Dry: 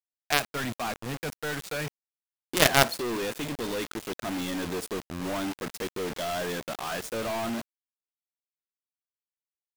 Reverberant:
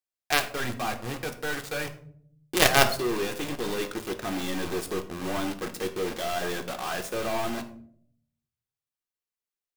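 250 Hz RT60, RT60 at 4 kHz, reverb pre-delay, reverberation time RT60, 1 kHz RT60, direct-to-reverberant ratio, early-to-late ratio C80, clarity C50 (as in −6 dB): 0.95 s, 0.35 s, 3 ms, 0.60 s, 0.45 s, 5.5 dB, 16.0 dB, 12.0 dB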